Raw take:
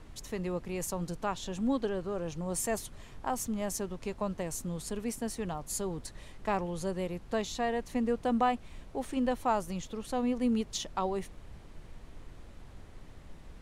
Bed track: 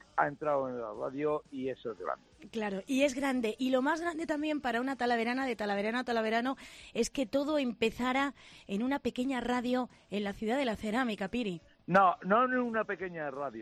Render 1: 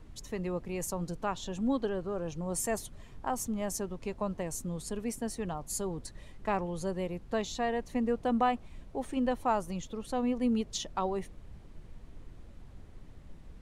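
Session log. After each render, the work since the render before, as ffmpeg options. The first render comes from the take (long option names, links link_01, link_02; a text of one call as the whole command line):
ffmpeg -i in.wav -af "afftdn=noise_reduction=6:noise_floor=-51" out.wav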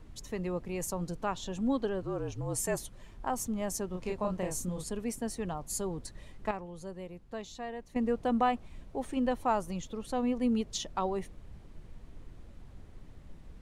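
ffmpeg -i in.wav -filter_complex "[0:a]asettb=1/sr,asplit=3[link_01][link_02][link_03];[link_01]atrim=end=2.024[link_04];[link_02]atrim=start=2.02:end=3.23,asetpts=PTS-STARTPTS,afade=type=in:duration=0.004:curve=qsin,afade=type=out:start_time=1.206:duration=0.004:curve=qsin,afreqshift=-43[link_05];[link_03]atrim=start=3.226[link_06];[link_04][link_05]acrossfade=duration=0.004:curve1=hsin:curve2=qsin[link_07];[link_07][link_06]acrossfade=duration=0.004:curve1=qsin:curve2=hsin,asettb=1/sr,asplit=3[link_08][link_09][link_10];[link_08]atrim=end=3.904[link_11];[link_09]atrim=start=3.9:end=4.84,asetpts=PTS-STARTPTS,afade=type=in:duration=0.004:curve=qsin,afade=type=out:start_time=0.936:duration=0.004:curve=qsin,asplit=2[link_12][link_13];[link_13]adelay=33,volume=-2.5dB[link_14];[link_12][link_14]amix=inputs=2:normalize=0,atrim=end_sample=41454[link_15];[link_10]atrim=start=4.836[link_16];[link_11][link_15]acrossfade=duration=0.004:curve1=hsin:curve2=qsin[link_17];[link_17][link_16]acrossfade=duration=0.004:curve1=qsin:curve2=hsin,asplit=3[link_18][link_19][link_20];[link_18]atrim=end=6.512[link_21];[link_19]atrim=start=6.508:end=7.962,asetpts=PTS-STARTPTS,volume=-8.5dB[link_22];[link_20]atrim=start=7.958[link_23];[link_21][link_22]acrossfade=duration=0.004:curve1=hsin:curve2=hsin[link_24];[link_24][link_23]acrossfade=duration=0.004:curve1=hsin:curve2=hsin" out.wav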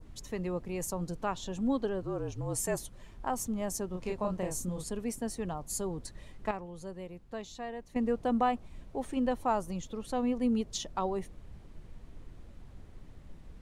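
ffmpeg -i in.wav -af "adynamicequalizer=threshold=0.00355:dfrequency=2400:dqfactor=0.74:tfrequency=2400:tqfactor=0.74:attack=5:release=100:ratio=0.375:range=2:mode=cutabove:tftype=bell" out.wav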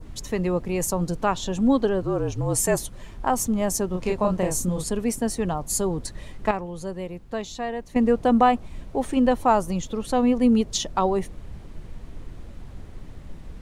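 ffmpeg -i in.wav -af "volume=10.5dB" out.wav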